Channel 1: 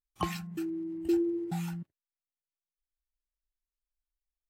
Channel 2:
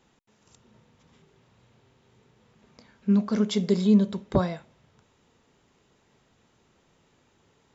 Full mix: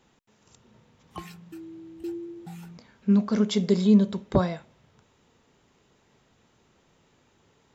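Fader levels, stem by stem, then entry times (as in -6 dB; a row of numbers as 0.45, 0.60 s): -7.0, +1.0 dB; 0.95, 0.00 s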